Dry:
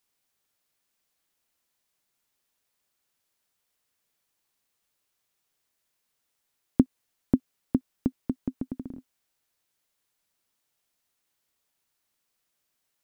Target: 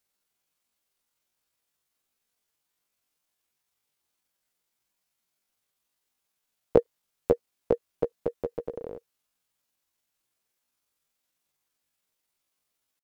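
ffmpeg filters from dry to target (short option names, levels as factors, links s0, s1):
-af "bandreject=f=990:w=28,asetrate=80880,aresample=44100,atempo=0.545254,volume=1.12"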